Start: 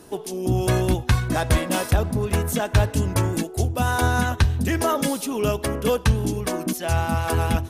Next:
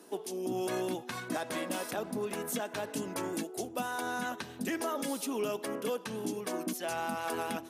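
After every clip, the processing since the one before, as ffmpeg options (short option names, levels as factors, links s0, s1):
-af "highpass=f=210:w=0.5412,highpass=f=210:w=1.3066,alimiter=limit=0.15:level=0:latency=1:release=93,volume=0.422"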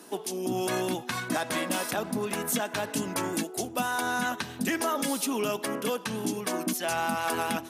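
-af "equalizer=f=440:t=o:w=1.3:g=-5.5,volume=2.51"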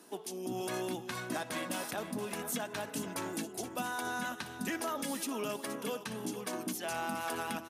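-af "aecho=1:1:473:0.266,volume=0.398"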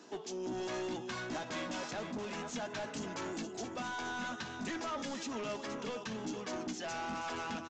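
-filter_complex "[0:a]asoftclip=type=tanh:threshold=0.0133,aresample=16000,aresample=44100,asplit=2[s0][s1];[s1]adelay=13,volume=0.282[s2];[s0][s2]amix=inputs=2:normalize=0,volume=1.33"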